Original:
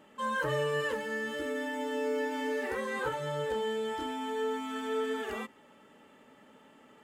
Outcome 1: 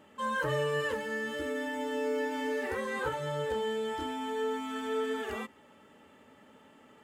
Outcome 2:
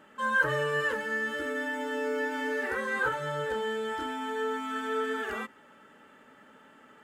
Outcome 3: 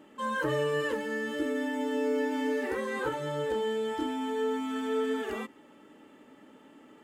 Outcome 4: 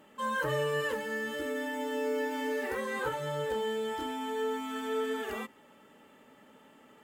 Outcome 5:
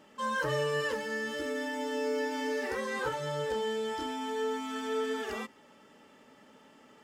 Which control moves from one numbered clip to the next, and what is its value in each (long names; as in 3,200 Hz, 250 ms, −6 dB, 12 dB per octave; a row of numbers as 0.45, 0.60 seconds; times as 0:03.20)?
parametric band, centre frequency: 83, 1,500, 310, 16,000, 5,300 Hertz